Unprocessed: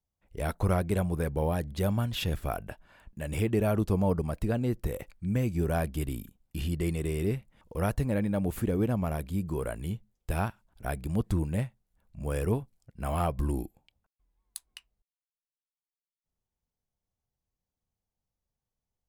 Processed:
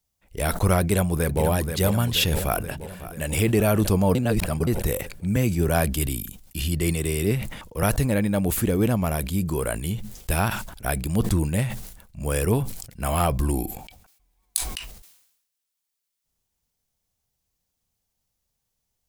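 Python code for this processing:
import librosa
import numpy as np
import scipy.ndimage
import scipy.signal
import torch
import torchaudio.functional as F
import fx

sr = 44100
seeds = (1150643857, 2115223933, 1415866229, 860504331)

y = fx.echo_throw(x, sr, start_s=0.81, length_s=0.62, ms=480, feedback_pct=65, wet_db=-7.5)
y = fx.echo_throw(y, sr, start_s=2.36, length_s=0.9, ms=550, feedback_pct=50, wet_db=-14.5)
y = fx.band_widen(y, sr, depth_pct=40, at=(5.36, 7.83))
y = fx.small_body(y, sr, hz=(740.0, 2300.0), ring_ms=45, db=9, at=(13.42, 14.69))
y = fx.edit(y, sr, fx.reverse_span(start_s=4.15, length_s=0.52), tone=tone)
y = fx.high_shelf(y, sr, hz=2500.0, db=10.5)
y = fx.sustainer(y, sr, db_per_s=68.0)
y = F.gain(torch.from_numpy(y), 5.5).numpy()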